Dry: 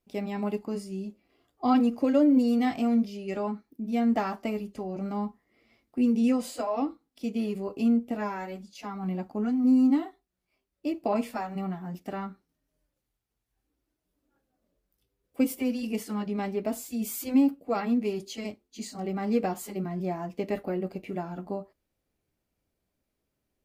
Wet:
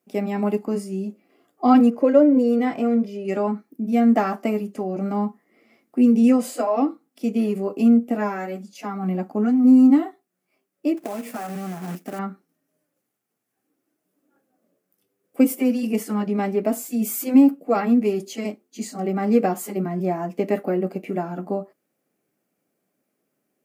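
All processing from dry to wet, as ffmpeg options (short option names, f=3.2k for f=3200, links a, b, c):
-filter_complex "[0:a]asettb=1/sr,asplit=3[a][b][c];[a]atrim=end=1.904[d];[b]atrim=start=1.9:end=3.25,asetpts=PTS-STARTPTS,afade=t=in:d=0.004:c=qsin,afade=t=out:st=1.346:d=0.004:c=qsin,highshelf=f=3.4k:g=-11,aecho=1:1:2:0.43,atrim=end_sample=59535[e];[c]atrim=start=3.246[f];[d][e]acrossfade=d=0.004:c1=hsin:c2=qsin[g];[g][f]acrossfade=d=0.004:c1=qsin:c2=hsin,asettb=1/sr,asplit=3[h][i][j];[h]atrim=end=10.974[k];[i]atrim=start=10.97:end=12.19,asetpts=PTS-STARTPTS,afade=t=in:d=0.004:c=qsin,afade=t=out:st=1.216:d=0.004:c=qsin,acompressor=threshold=-34dB:ratio=16:attack=3.2:release=140:knee=1:detection=peak,acrusher=bits=2:mode=log:mix=0:aa=0.000001[l];[j]atrim=start=12.186[m];[k][l]acrossfade=d=0.004:c1=hsin:c2=qsin[n];[n][m]acrossfade=d=0.004:c1=qsin:c2=hsin,highpass=f=170:w=0.5412,highpass=f=170:w=1.3066,equalizer=f=3.9k:w=1.2:g=-8.5,bandreject=f=950:w=8.3,volume=8.5dB"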